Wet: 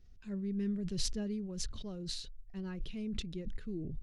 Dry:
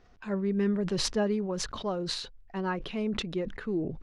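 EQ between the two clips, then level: amplifier tone stack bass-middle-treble 10-0-1; treble shelf 3.8 kHz +8.5 dB; +9.5 dB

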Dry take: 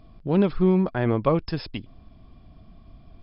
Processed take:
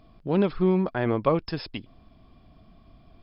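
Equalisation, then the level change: bass shelf 180 Hz -7 dB; 0.0 dB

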